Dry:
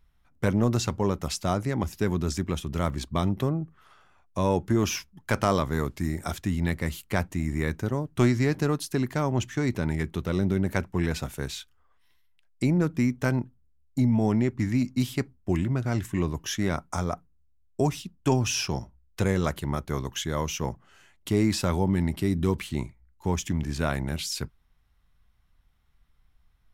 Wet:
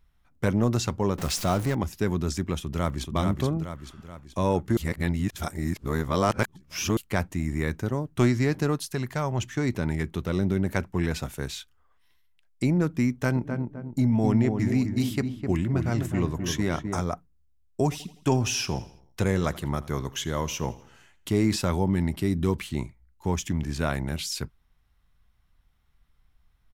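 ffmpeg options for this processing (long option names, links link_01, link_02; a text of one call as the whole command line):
ffmpeg -i in.wav -filter_complex "[0:a]asettb=1/sr,asplit=3[link_01][link_02][link_03];[link_01]atrim=end=1.184[link_04];[link_02]atrim=start=1.18:end=1.75,asetpts=PTS-STARTPTS,afade=type=in:duration=0.004:curve=qsin,afade=type=out:start_time=0.566:duration=0.004:curve=qsin,aeval=exprs='val(0)+0.5*0.0316*sgn(val(0))':channel_layout=same[link_05];[link_03]atrim=start=1.746[link_06];[link_04][link_05]acrossfade=duration=0.004:curve1=hsin:curve2=qsin[link_07];[link_07][link_06]acrossfade=duration=0.004:curve1=qsin:curve2=hsin,asplit=2[link_08][link_09];[link_09]afade=type=in:start_time=2.57:duration=0.01,afade=type=out:start_time=3.14:duration=0.01,aecho=0:1:430|860|1290|1720|2150|2580:0.630957|0.315479|0.157739|0.0788697|0.0394348|0.0197174[link_10];[link_08][link_10]amix=inputs=2:normalize=0,asettb=1/sr,asplit=3[link_11][link_12][link_13];[link_11]atrim=end=8.774[link_14];[link_12]atrim=start=8.77:end=9.42,asetpts=PTS-STARTPTS,afade=type=in:duration=0.004:curve=qsin,afade=type=out:start_time=0.646:duration=0.004:curve=qsin,equalizer=frequency=290:width_type=o:width=0.77:gain=-8.5[link_15];[link_13]atrim=start=9.416[link_16];[link_14][link_15]acrossfade=duration=0.004:curve1=hsin:curve2=qsin[link_17];[link_17][link_16]acrossfade=duration=0.004:curve1=qsin:curve2=hsin,asplit=3[link_18][link_19][link_20];[link_18]afade=type=out:start_time=13.35:duration=0.02[link_21];[link_19]asplit=2[link_22][link_23];[link_23]adelay=257,lowpass=frequency=1100:poles=1,volume=-5dB,asplit=2[link_24][link_25];[link_25]adelay=257,lowpass=frequency=1100:poles=1,volume=0.43,asplit=2[link_26][link_27];[link_27]adelay=257,lowpass=frequency=1100:poles=1,volume=0.43,asplit=2[link_28][link_29];[link_29]adelay=257,lowpass=frequency=1100:poles=1,volume=0.43,asplit=2[link_30][link_31];[link_31]adelay=257,lowpass=frequency=1100:poles=1,volume=0.43[link_32];[link_22][link_24][link_26][link_28][link_30][link_32]amix=inputs=6:normalize=0,afade=type=in:start_time=13.35:duration=0.02,afade=type=out:start_time=17:duration=0.02[link_33];[link_20]afade=type=in:start_time=17:duration=0.02[link_34];[link_21][link_33][link_34]amix=inputs=3:normalize=0,asettb=1/sr,asplit=3[link_35][link_36][link_37];[link_35]atrim=end=17.834[link_38];[link_36]atrim=start=17.83:end=21.56,asetpts=PTS-STARTPTS,afade=type=in:duration=0.004:curve=qsin,afade=type=out:start_time=3.726:duration=0.004:curve=qsin,aecho=1:1:83|166|249|332:0.112|0.0561|0.0281|0.014,atrim=end_sample=164493[link_39];[link_37]atrim=start=21.556[link_40];[link_38][link_39]acrossfade=duration=0.004:curve1=hsin:curve2=qsin[link_41];[link_41][link_40]acrossfade=duration=0.004:curve1=qsin:curve2=hsin,asplit=3[link_42][link_43][link_44];[link_42]atrim=end=4.772[link_45];[link_43]atrim=start=4.768:end=6.972,asetpts=PTS-STARTPTS,areverse[link_46];[link_44]atrim=start=6.968[link_47];[link_45][link_46]acrossfade=duration=0.004:curve1=hsin:curve2=hsin[link_48];[link_48][link_47]acrossfade=duration=0.004:curve1=hsin:curve2=hsin" out.wav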